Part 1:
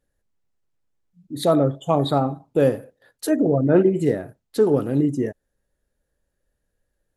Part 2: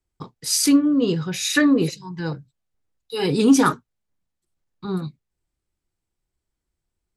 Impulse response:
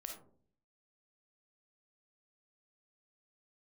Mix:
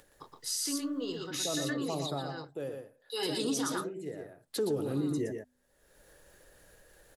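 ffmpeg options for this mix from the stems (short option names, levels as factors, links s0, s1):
-filter_complex "[0:a]equalizer=f=240:t=o:w=0.25:g=-9.5,bandreject=f=82.8:t=h:w=4,bandreject=f=165.6:t=h:w=4,bandreject=f=248.4:t=h:w=4,acompressor=mode=upward:threshold=0.0282:ratio=2.5,volume=1.78,afade=t=out:st=2.04:d=0.4:silence=0.446684,afade=t=in:st=4.16:d=0.43:silence=0.237137,asplit=3[s0][s1][s2];[s1]volume=0.473[s3];[1:a]equalizer=f=190:w=1.6:g=-13,bandreject=f=2400:w=5.4,dynaudnorm=f=420:g=7:m=3.76,volume=0.335,asplit=2[s4][s5];[s5]volume=0.596[s6];[s2]apad=whole_len=315823[s7];[s4][s7]sidechaincompress=threshold=0.0398:ratio=8:attack=49:release=1460[s8];[s3][s6]amix=inputs=2:normalize=0,aecho=0:1:118:1[s9];[s0][s8][s9]amix=inputs=3:normalize=0,acrossover=split=310|3000[s10][s11][s12];[s11]acompressor=threshold=0.01:ratio=2[s13];[s10][s13][s12]amix=inputs=3:normalize=0,lowshelf=f=190:g=-12,alimiter=limit=0.0708:level=0:latency=1:release=83"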